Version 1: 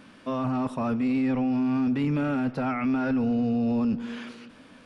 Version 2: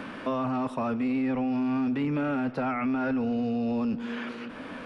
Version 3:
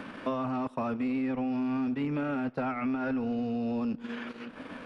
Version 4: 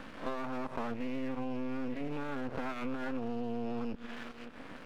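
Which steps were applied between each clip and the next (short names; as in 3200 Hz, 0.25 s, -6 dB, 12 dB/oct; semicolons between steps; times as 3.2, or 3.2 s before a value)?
tone controls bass -6 dB, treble -7 dB; three-band squash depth 70%
transient shaper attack +2 dB, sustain -11 dB; gain -3 dB
spectral swells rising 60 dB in 0.37 s; half-wave rectifier; gain -2.5 dB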